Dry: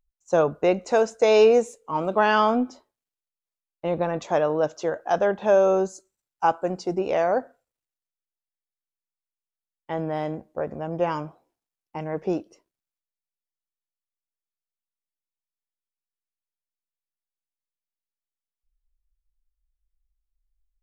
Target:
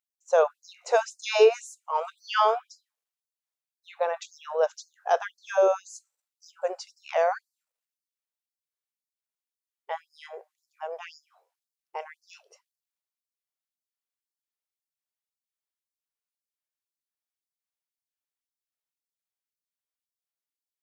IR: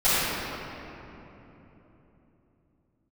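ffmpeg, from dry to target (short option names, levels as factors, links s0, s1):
-af "afftfilt=real='re*gte(b*sr/1024,370*pow(4300/370,0.5+0.5*sin(2*PI*1.9*pts/sr)))':imag='im*gte(b*sr/1024,370*pow(4300/370,0.5+0.5*sin(2*PI*1.9*pts/sr)))':win_size=1024:overlap=0.75"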